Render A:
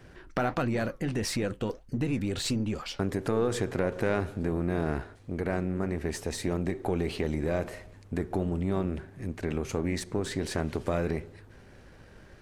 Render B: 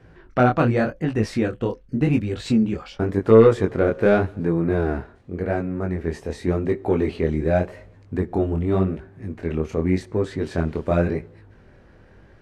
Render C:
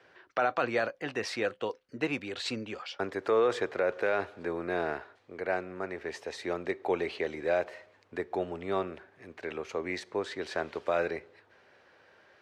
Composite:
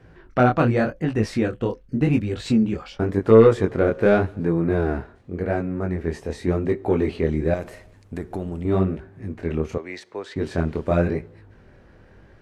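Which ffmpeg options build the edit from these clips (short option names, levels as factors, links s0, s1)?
-filter_complex "[1:a]asplit=3[s0][s1][s2];[s0]atrim=end=7.542[s3];[0:a]atrim=start=7.538:end=8.652[s4];[s1]atrim=start=8.648:end=9.782[s5];[2:a]atrim=start=9.778:end=10.362[s6];[s2]atrim=start=10.358[s7];[s3][s4]acrossfade=d=0.004:c1=hsin:c2=hsin[s8];[s8][s5]acrossfade=d=0.004:c1=hsin:c2=hsin[s9];[s9][s6]acrossfade=d=0.004:c1=hsin:c2=hsin[s10];[s10][s7]acrossfade=d=0.004:c1=hsin:c2=hsin"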